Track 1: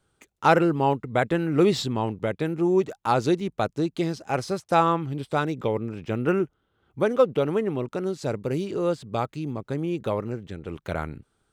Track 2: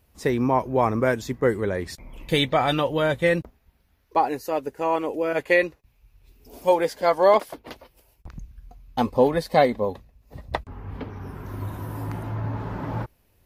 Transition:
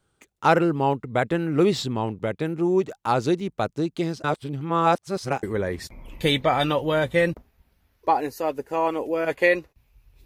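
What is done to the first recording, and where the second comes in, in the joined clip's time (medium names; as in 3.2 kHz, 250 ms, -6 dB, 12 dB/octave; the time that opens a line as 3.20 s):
track 1
4.24–5.43 s: reverse
5.43 s: go over to track 2 from 1.51 s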